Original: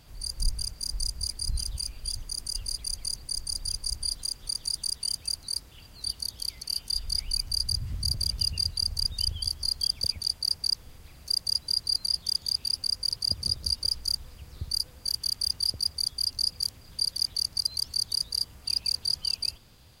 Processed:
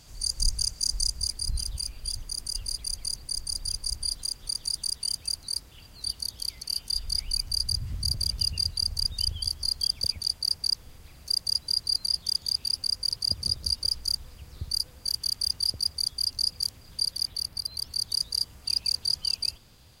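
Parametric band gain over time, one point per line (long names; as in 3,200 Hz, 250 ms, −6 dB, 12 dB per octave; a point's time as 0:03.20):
parametric band 6,700 Hz 0.99 octaves
0:00.91 +11 dB
0:01.50 +1 dB
0:17.00 +1 dB
0:17.65 −9.5 dB
0:18.19 +2 dB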